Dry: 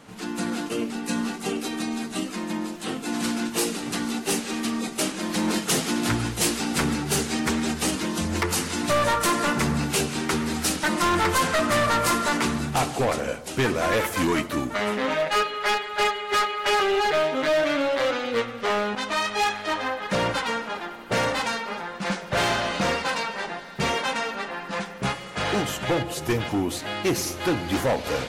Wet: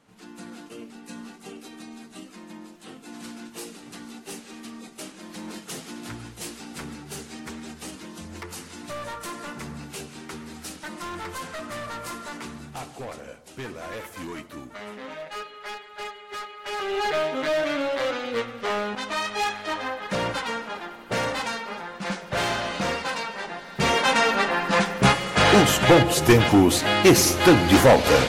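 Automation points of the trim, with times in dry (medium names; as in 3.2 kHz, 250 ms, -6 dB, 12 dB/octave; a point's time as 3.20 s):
16.60 s -13 dB
17.04 s -2.5 dB
23.48 s -2.5 dB
24.30 s +9 dB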